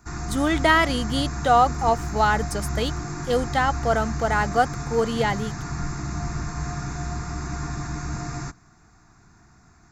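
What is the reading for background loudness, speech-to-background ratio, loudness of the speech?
-30.5 LUFS, 7.5 dB, -23.0 LUFS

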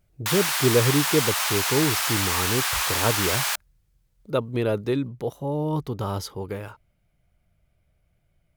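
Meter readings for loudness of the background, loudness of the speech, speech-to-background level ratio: -23.0 LUFS, -26.5 LUFS, -3.5 dB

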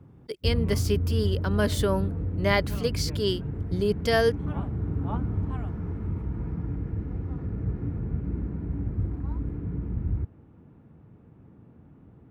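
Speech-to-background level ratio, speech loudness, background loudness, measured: 3.0 dB, -28.0 LUFS, -31.0 LUFS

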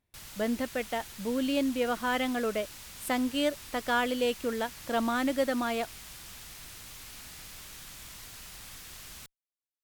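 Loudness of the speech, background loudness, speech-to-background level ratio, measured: -30.5 LUFS, -44.0 LUFS, 13.5 dB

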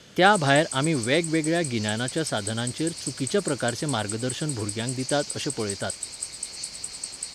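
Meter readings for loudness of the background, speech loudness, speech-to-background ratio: -33.0 LUFS, -26.0 LUFS, 7.0 dB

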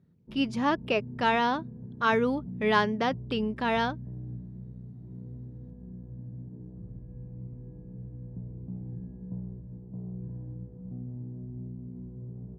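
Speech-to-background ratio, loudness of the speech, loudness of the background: 14.0 dB, -28.0 LUFS, -42.0 LUFS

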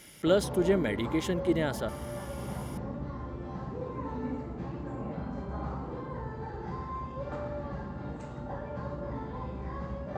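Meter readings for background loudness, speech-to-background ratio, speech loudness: -38.0 LUFS, 8.5 dB, -29.5 LUFS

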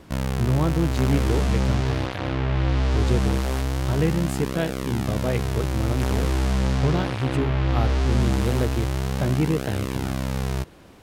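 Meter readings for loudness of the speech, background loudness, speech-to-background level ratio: -27.5 LUFS, -25.5 LUFS, -2.0 dB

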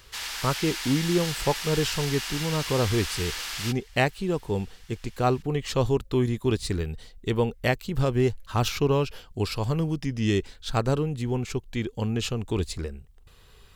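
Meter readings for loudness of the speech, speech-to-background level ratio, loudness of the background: -27.5 LUFS, 4.0 dB, -31.5 LUFS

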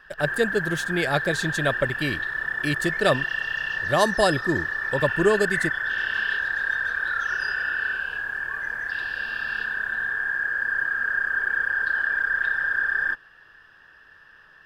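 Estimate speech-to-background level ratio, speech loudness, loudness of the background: -0.5 dB, -25.5 LUFS, -25.0 LUFS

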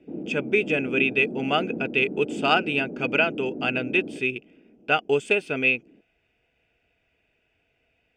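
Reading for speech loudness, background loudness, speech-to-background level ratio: -24.0 LUFS, -34.5 LUFS, 10.5 dB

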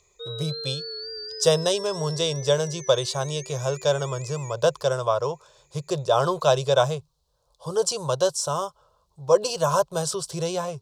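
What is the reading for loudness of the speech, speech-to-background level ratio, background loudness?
-24.5 LUFS, 11.5 dB, -36.0 LUFS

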